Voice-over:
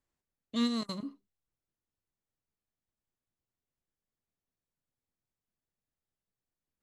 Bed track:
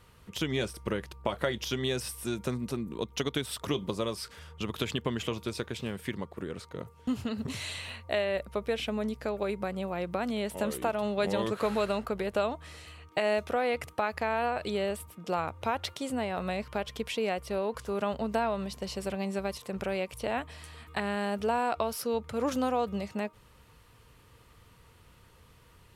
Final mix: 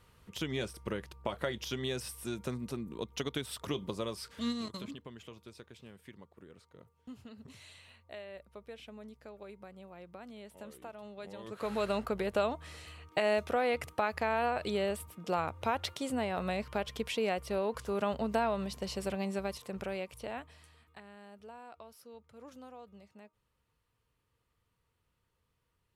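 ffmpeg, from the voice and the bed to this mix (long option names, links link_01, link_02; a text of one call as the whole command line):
ffmpeg -i stem1.wav -i stem2.wav -filter_complex "[0:a]adelay=3850,volume=-5dB[link_01];[1:a]volume=10.5dB,afade=type=out:start_time=4.41:duration=0.21:silence=0.251189,afade=type=in:start_time=11.43:duration=0.54:silence=0.16788,afade=type=out:start_time=19.08:duration=1.95:silence=0.1[link_02];[link_01][link_02]amix=inputs=2:normalize=0" out.wav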